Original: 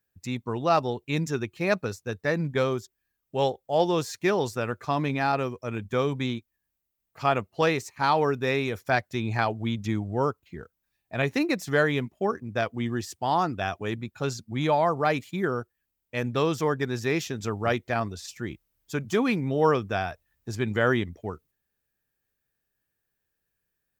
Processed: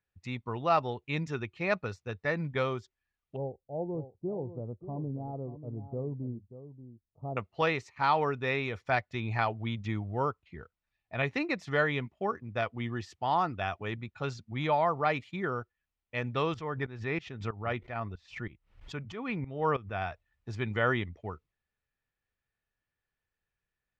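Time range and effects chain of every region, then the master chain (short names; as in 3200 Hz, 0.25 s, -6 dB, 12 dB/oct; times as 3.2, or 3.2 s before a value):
3.36–7.37 Gaussian blur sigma 16 samples + echo 0.584 s -12.5 dB
16.54–20.02 tone controls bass +2 dB, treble -10 dB + tremolo saw up 3.1 Hz, depth 85% + backwards sustainer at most 140 dB/s
whole clip: LPF 2900 Hz 12 dB/oct; bell 290 Hz -8 dB 2.6 oct; notch 1600 Hz, Q 11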